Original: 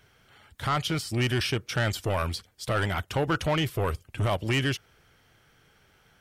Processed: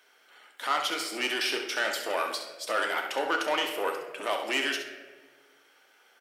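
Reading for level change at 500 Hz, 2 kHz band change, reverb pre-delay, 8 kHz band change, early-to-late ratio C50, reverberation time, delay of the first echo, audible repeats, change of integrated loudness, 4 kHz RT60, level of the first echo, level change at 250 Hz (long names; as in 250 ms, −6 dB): −1.0 dB, +2.0 dB, 3 ms, +1.5 dB, 5.0 dB, 1.3 s, 67 ms, 1, −1.0 dB, 0.80 s, −8.5 dB, −8.0 dB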